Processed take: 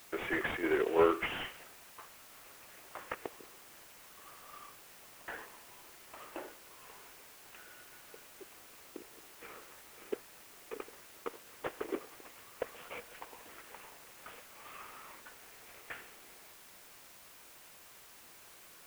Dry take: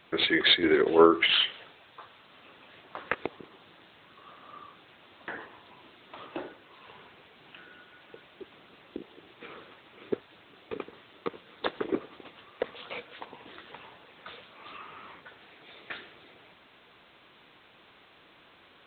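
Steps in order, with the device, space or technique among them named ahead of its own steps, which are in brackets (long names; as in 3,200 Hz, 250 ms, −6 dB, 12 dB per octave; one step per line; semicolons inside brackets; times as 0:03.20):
army field radio (band-pass filter 360–3,000 Hz; variable-slope delta modulation 16 kbit/s; white noise bed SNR 15 dB)
level −4.5 dB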